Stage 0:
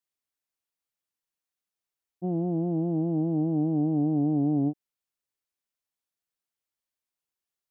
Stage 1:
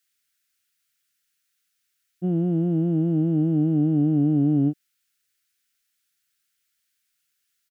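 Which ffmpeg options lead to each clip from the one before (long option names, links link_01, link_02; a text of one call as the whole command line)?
ffmpeg -i in.wav -af "firequalizer=gain_entry='entry(170,0);entry(940,-14);entry(1400,9)':delay=0.05:min_phase=1,volume=6.5dB" out.wav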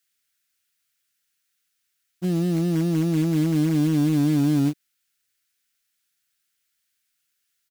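ffmpeg -i in.wav -af "acrusher=bits=4:mode=log:mix=0:aa=0.000001" out.wav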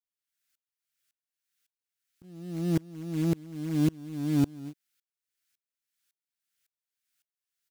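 ffmpeg -i in.wav -af "aeval=exprs='val(0)*pow(10,-30*if(lt(mod(-1.8*n/s,1),2*abs(-1.8)/1000),1-mod(-1.8*n/s,1)/(2*abs(-1.8)/1000),(mod(-1.8*n/s,1)-2*abs(-1.8)/1000)/(1-2*abs(-1.8)/1000))/20)':channel_layout=same" out.wav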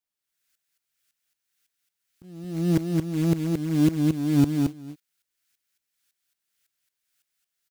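ffmpeg -i in.wav -af "aecho=1:1:223:0.668,volume=4.5dB" out.wav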